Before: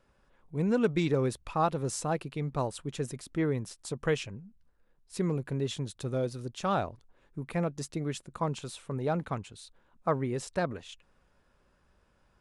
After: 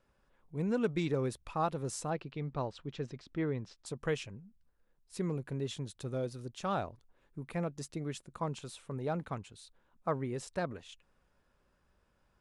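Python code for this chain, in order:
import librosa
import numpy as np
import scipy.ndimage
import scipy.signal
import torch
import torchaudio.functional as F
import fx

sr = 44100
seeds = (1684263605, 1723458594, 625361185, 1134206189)

y = fx.lowpass(x, sr, hz=5100.0, slope=24, at=(2.1, 3.86))
y = F.gain(torch.from_numpy(y), -5.0).numpy()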